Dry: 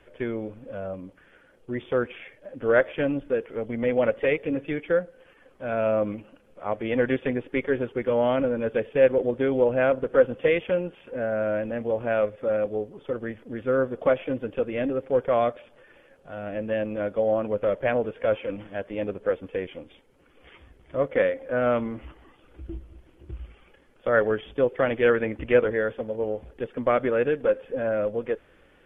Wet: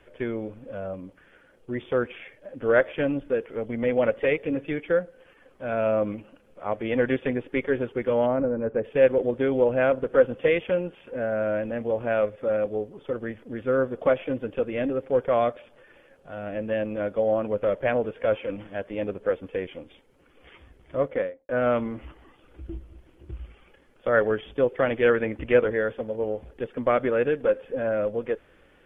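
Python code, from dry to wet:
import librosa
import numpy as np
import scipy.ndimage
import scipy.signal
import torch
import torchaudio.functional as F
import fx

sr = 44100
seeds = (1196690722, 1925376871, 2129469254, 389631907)

y = fx.gaussian_blur(x, sr, sigma=5.2, at=(8.25, 8.83), fade=0.02)
y = fx.studio_fade_out(y, sr, start_s=20.98, length_s=0.51)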